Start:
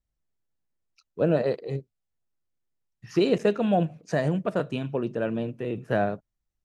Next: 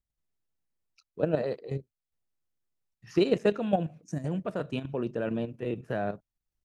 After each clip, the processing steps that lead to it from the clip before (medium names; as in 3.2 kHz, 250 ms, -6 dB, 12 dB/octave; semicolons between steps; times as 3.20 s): time-frequency box 4.04–4.25 s, 350–5300 Hz -16 dB; level held to a coarse grid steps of 10 dB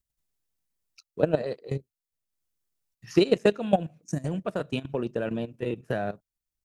treble shelf 4.2 kHz +8.5 dB; transient shaper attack +5 dB, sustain -5 dB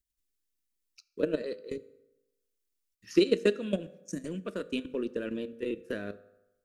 static phaser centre 320 Hz, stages 4; on a send at -15 dB: reverberation RT60 1.0 s, pre-delay 3 ms; on the sum: trim -1.5 dB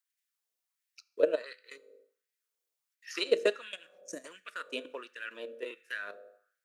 LFO high-pass sine 1.4 Hz 550–1900 Hz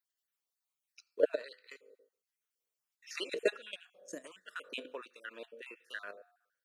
random holes in the spectrogram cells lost 30%; trim -2 dB